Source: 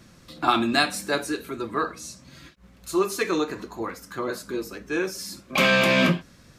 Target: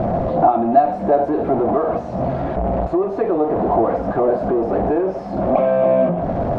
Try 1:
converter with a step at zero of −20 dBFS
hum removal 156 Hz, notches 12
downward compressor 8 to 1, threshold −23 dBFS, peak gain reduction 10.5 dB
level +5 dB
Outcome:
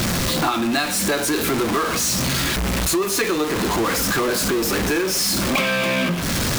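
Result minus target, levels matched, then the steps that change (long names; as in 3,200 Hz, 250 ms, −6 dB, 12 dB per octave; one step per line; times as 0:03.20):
500 Hz band −6.0 dB
add after downward compressor: low-pass with resonance 690 Hz, resonance Q 6.7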